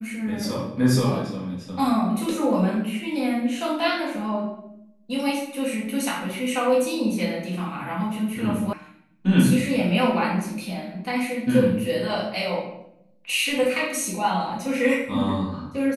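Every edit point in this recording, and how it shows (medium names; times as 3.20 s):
8.73 s: sound stops dead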